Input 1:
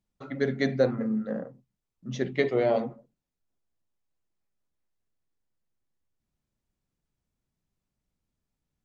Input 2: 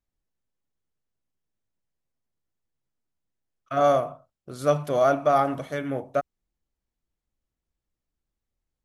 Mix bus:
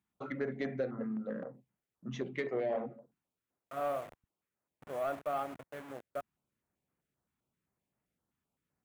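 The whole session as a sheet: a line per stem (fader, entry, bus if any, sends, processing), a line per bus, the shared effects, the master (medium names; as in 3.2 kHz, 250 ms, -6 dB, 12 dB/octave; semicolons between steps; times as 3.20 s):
+1.0 dB, 0.00 s, no send, compression 2.5:1, threshold -36 dBFS, peak gain reduction 12.5 dB; step-sequenced notch 7.7 Hz 550–4400 Hz
-16.0 dB, 0.00 s, muted 4.24–4.82 s, no send, send-on-delta sampling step -28 dBFS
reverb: none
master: high-pass 76 Hz; peaking EQ 4.8 kHz -12.5 dB 1.3 oct; overdrive pedal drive 10 dB, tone 4.7 kHz, clips at -25 dBFS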